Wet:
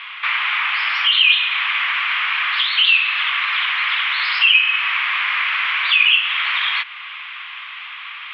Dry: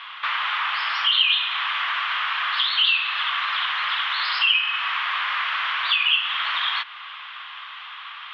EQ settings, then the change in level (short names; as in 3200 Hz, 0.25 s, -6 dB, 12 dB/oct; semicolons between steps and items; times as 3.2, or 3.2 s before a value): bell 2300 Hz +12 dB 0.66 oct; -1.0 dB